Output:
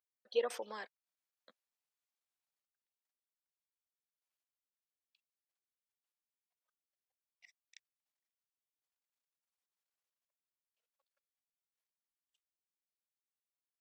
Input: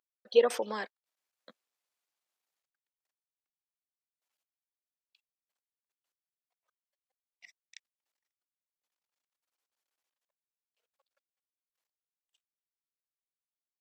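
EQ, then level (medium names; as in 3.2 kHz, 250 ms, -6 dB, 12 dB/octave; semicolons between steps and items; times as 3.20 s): bass shelf 240 Hz -11.5 dB; -8.0 dB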